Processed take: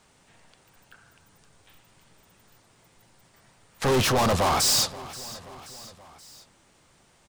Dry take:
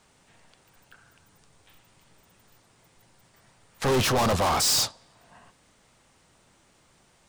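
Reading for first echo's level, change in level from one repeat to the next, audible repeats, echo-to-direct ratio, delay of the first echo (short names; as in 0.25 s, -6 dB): -18.0 dB, -5.0 dB, 3, -16.5 dB, 0.529 s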